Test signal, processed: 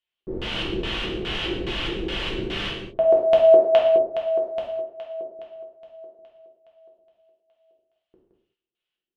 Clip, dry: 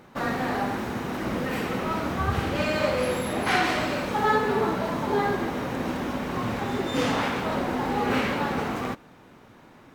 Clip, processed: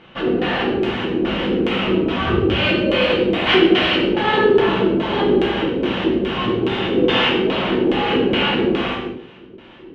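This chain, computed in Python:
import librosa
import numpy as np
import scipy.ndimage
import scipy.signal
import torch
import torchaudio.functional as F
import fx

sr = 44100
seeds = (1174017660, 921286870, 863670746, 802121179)

y = x + 10.0 ** (-6.5 / 20.0) * np.pad(x, (int(169 * sr / 1000.0), 0))[:len(x)]
y = fx.filter_lfo_lowpass(y, sr, shape='square', hz=2.4, low_hz=380.0, high_hz=3000.0, q=5.9)
y = fx.rev_gated(y, sr, seeds[0], gate_ms=240, shape='falling', drr_db=-3.0)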